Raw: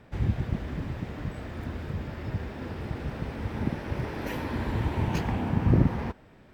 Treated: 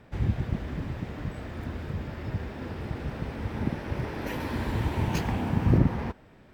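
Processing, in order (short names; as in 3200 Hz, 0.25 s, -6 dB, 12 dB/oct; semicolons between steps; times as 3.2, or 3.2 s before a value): 4.4–5.78 high shelf 4500 Hz +6.5 dB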